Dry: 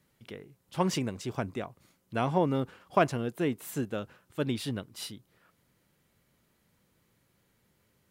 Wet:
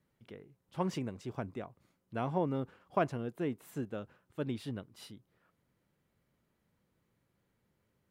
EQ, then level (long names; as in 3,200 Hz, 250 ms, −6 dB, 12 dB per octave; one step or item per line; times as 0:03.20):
high-shelf EQ 2,500 Hz −9 dB
−5.5 dB